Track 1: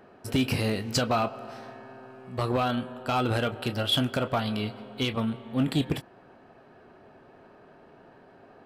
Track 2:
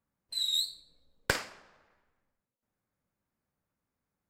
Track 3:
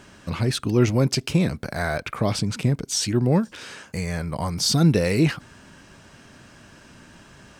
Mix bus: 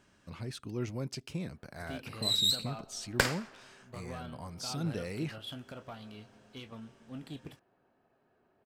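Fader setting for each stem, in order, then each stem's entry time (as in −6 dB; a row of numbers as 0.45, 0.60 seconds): −18.5, +2.0, −17.5 decibels; 1.55, 1.90, 0.00 seconds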